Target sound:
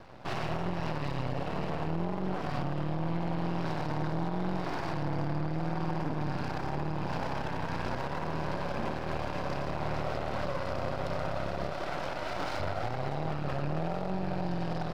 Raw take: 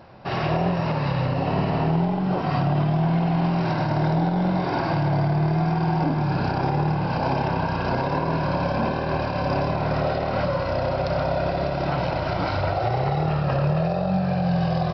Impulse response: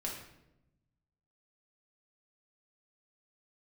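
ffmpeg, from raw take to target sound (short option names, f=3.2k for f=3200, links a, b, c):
-filter_complex "[0:a]asettb=1/sr,asplit=3[a][b][c];[a]atrim=end=11.714[d];[b]atrim=start=11.71:end=12.6,asetpts=PTS-STARTPTS,afade=t=in:d=0.004:c=qsin,afade=t=out:st=0.886:d=0.004:c=qsin,highpass=280[e];[c]atrim=start=12.596[f];[d][e]acrossfade=d=0.004:c1=hsin:c2=qsin[g];[g][f]acrossfade=d=0.004:c1=qsin:c2=hsin,alimiter=limit=-21dB:level=0:latency=1:release=233,aeval=exprs='max(val(0),0)':c=same"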